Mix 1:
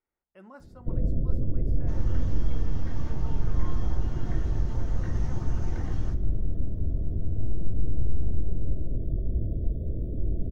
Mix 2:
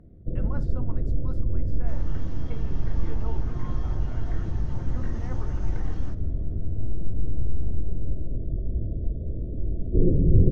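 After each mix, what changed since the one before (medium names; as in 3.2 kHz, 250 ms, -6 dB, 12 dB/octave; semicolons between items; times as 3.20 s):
speech +6.5 dB; first sound: entry -0.60 s; master: add distance through air 59 m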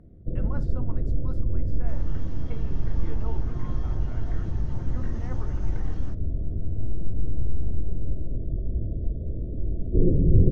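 second sound: send -10.5 dB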